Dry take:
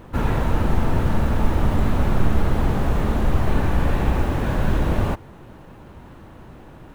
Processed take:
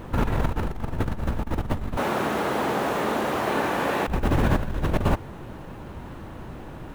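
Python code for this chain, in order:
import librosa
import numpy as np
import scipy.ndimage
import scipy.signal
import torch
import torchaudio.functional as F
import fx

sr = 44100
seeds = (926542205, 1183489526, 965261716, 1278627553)

y = fx.highpass(x, sr, hz=360.0, slope=12, at=(1.97, 4.08))
y = fx.over_compress(y, sr, threshold_db=-22.0, ratio=-0.5)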